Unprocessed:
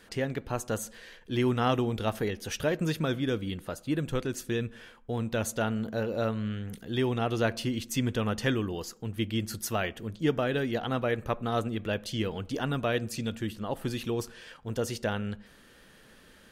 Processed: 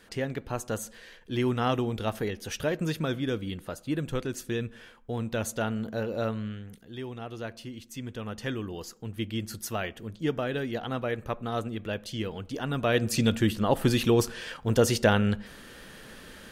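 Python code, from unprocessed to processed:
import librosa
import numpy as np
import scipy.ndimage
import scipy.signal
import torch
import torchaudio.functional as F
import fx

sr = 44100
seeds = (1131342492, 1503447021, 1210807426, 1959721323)

y = fx.gain(x, sr, db=fx.line((6.35, -0.5), (6.9, -10.0), (7.96, -10.0), (8.86, -2.0), (12.62, -2.0), (13.19, 9.0)))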